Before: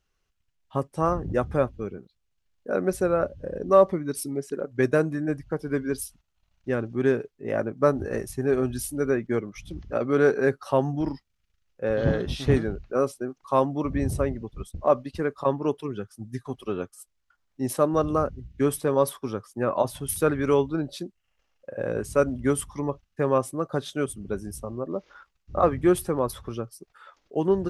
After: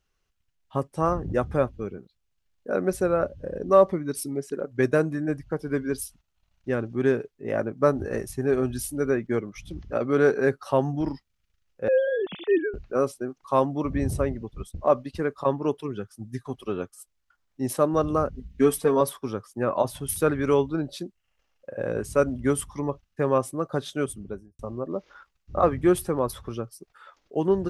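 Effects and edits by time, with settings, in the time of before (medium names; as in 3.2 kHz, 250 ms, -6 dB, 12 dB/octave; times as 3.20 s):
11.88–12.74 s: formants replaced by sine waves
18.34–19.01 s: comb 4.4 ms, depth 82%
24.10–24.59 s: studio fade out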